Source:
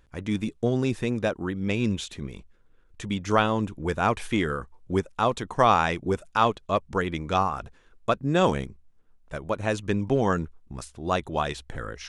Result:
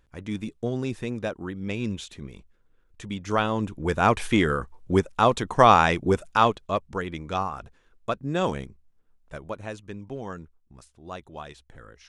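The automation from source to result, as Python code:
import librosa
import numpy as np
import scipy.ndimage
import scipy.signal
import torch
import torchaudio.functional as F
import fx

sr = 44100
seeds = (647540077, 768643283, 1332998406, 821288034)

y = fx.gain(x, sr, db=fx.line((3.19, -4.0), (4.14, 4.0), (6.24, 4.0), (6.98, -4.0), (9.4, -4.0), (9.86, -12.5)))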